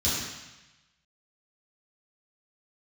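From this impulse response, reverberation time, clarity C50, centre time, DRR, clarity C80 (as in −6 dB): 1.0 s, −1.0 dB, 85 ms, −11.5 dB, 2.0 dB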